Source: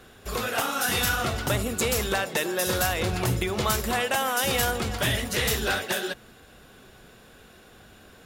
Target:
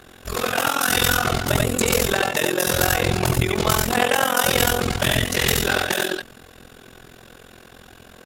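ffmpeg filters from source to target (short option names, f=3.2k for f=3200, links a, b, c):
-af "aecho=1:1:78|86:0.631|0.501,tremolo=f=43:d=0.919,volume=7.5dB"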